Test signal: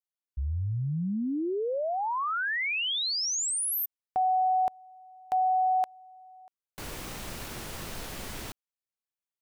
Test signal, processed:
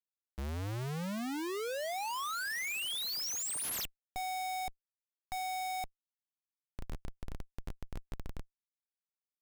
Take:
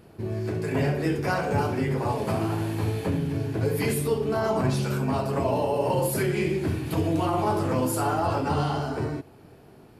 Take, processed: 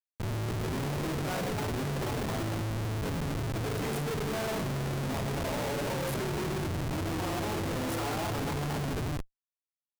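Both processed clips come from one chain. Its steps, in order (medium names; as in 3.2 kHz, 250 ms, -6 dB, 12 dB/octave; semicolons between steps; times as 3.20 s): Schmitt trigger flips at -29 dBFS; trim -6 dB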